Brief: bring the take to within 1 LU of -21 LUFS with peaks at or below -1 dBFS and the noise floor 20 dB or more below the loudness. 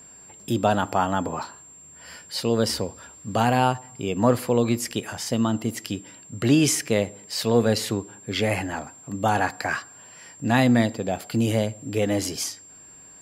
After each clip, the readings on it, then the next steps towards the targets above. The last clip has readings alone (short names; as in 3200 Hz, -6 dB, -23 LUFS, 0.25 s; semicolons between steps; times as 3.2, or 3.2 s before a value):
dropouts 1; longest dropout 1.3 ms; steady tone 7400 Hz; tone level -45 dBFS; loudness -24.5 LUFS; peak -5.0 dBFS; loudness target -21.0 LUFS
-> interpolate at 1.43, 1.3 ms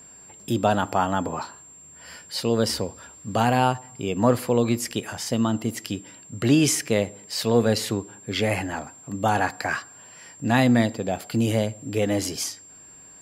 dropouts 0; steady tone 7400 Hz; tone level -45 dBFS
-> notch 7400 Hz, Q 30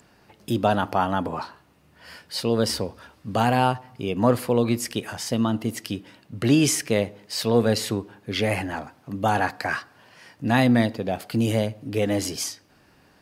steady tone none; loudness -24.5 LUFS; peak -5.0 dBFS; loudness target -21.0 LUFS
-> gain +3.5 dB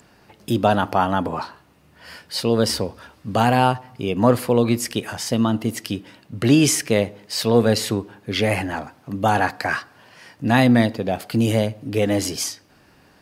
loudness -21.0 LUFS; peak -1.5 dBFS; noise floor -55 dBFS